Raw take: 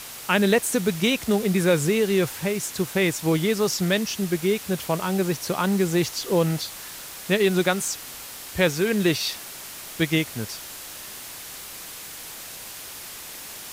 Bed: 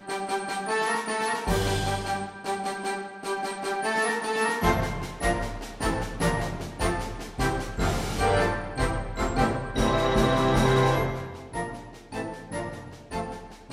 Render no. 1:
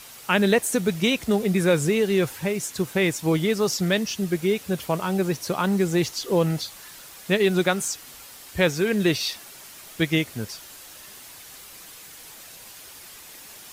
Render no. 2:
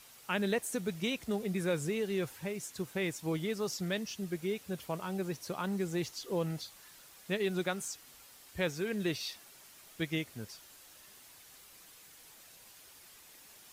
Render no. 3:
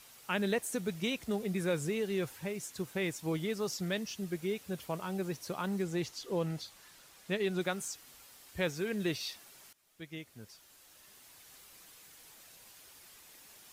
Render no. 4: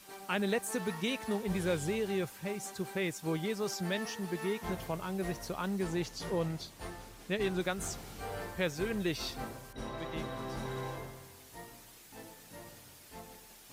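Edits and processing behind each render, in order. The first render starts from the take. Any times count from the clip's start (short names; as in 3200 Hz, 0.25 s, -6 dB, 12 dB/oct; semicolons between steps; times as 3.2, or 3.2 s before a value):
denoiser 7 dB, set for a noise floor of -39 dBFS
gain -12.5 dB
5.82–7.61 high shelf 11000 Hz -7.5 dB; 9.73–11.52 fade in, from -19.5 dB
add bed -18 dB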